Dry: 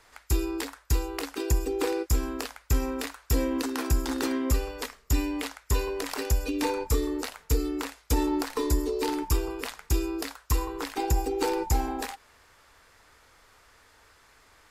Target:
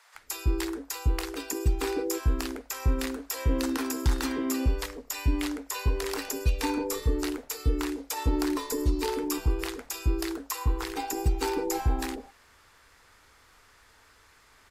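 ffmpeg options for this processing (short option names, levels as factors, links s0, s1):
-filter_complex "[0:a]acrossover=split=590[s0][s1];[s0]adelay=150[s2];[s2][s1]amix=inputs=2:normalize=0"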